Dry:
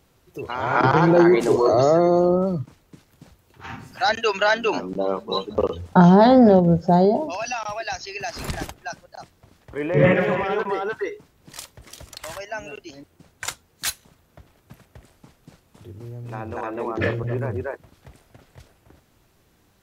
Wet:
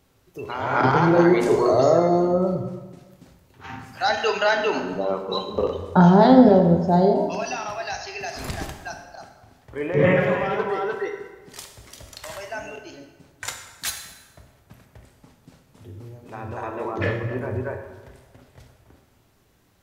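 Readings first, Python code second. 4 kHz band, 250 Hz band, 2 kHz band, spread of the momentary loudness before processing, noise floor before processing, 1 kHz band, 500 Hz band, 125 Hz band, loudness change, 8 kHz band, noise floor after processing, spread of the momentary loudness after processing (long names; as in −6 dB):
−1.5 dB, −0.5 dB, −1.0 dB, 22 LU, −61 dBFS, −0.5 dB, −0.5 dB, −1.0 dB, −0.5 dB, −1.0 dB, −60 dBFS, 22 LU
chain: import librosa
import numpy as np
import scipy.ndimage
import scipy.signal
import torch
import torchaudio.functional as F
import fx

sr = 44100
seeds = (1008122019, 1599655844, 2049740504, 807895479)

y = fx.rev_plate(x, sr, seeds[0], rt60_s=1.3, hf_ratio=0.75, predelay_ms=0, drr_db=3.5)
y = y * librosa.db_to_amplitude(-2.5)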